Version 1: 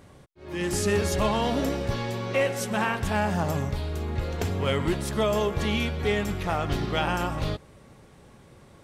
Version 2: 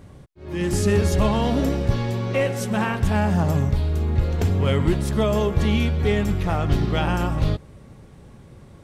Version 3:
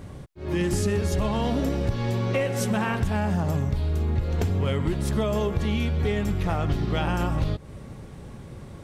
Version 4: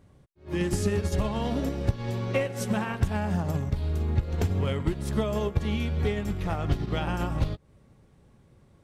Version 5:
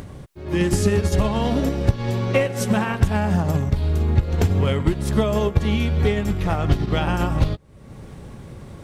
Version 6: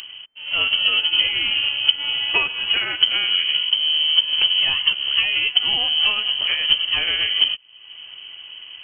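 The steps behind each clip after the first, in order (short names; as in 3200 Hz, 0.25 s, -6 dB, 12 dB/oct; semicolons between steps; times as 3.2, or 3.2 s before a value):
low shelf 290 Hz +10 dB
compressor 6:1, threshold -26 dBFS, peak gain reduction 12.5 dB; gain +4.5 dB
upward expander 2.5:1, over -33 dBFS; gain +2 dB
upward compressor, threshold -33 dBFS; gain +7.5 dB
inverted band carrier 3100 Hz; gain -1 dB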